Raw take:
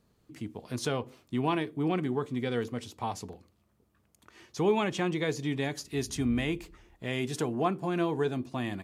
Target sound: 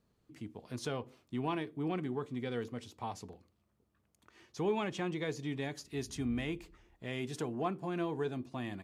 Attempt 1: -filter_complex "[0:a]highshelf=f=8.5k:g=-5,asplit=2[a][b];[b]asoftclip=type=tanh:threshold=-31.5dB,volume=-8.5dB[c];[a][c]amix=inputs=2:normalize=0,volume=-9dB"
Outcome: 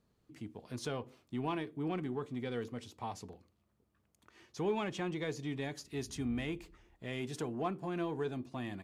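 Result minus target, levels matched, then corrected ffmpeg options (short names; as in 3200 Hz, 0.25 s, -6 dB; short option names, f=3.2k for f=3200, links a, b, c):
soft clip: distortion +11 dB
-filter_complex "[0:a]highshelf=f=8.5k:g=-5,asplit=2[a][b];[b]asoftclip=type=tanh:threshold=-20.5dB,volume=-8.5dB[c];[a][c]amix=inputs=2:normalize=0,volume=-9dB"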